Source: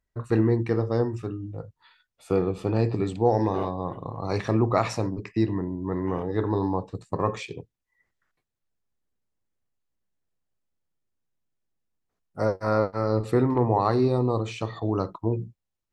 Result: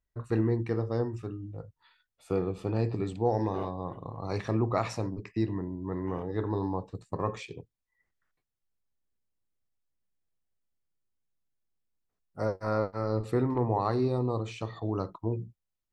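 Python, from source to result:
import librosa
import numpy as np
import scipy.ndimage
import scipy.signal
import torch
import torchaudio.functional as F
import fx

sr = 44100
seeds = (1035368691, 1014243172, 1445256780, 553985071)

y = fx.low_shelf(x, sr, hz=68.0, db=5.0)
y = F.gain(torch.from_numpy(y), -6.0).numpy()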